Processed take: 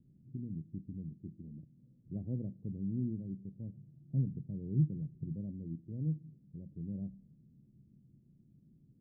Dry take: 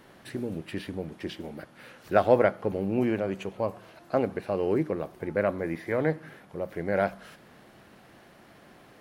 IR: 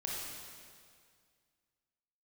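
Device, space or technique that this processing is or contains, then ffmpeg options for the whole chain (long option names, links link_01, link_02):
the neighbour's flat through the wall: -filter_complex "[0:a]lowpass=frequency=230:width=0.5412,lowpass=frequency=230:width=1.3066,equalizer=frequency=140:width_type=o:width=0.45:gain=7,asplit=3[link_01][link_02][link_03];[link_01]afade=type=out:start_time=3.74:duration=0.02[link_04];[link_02]equalizer=frequency=140:width_type=o:width=0.42:gain=10.5,afade=type=in:start_time=3.74:duration=0.02,afade=type=out:start_time=5.32:duration=0.02[link_05];[link_03]afade=type=in:start_time=5.32:duration=0.02[link_06];[link_04][link_05][link_06]amix=inputs=3:normalize=0,volume=-5.5dB"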